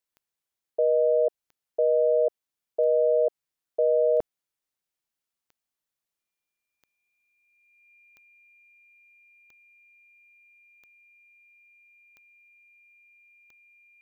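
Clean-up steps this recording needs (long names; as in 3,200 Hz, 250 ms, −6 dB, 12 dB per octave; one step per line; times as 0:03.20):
click removal
notch filter 2,400 Hz, Q 30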